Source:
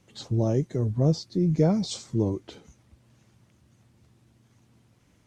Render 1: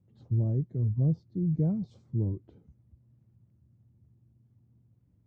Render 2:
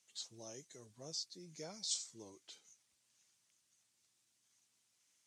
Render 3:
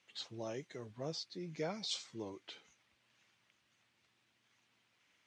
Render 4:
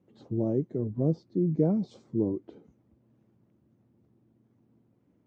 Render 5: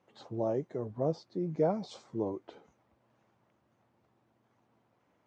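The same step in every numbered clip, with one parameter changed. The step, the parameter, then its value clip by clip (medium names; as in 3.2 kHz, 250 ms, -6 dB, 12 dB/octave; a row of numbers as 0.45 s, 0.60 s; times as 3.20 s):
band-pass filter, frequency: 100 Hz, 7.6 kHz, 2.6 kHz, 300 Hz, 790 Hz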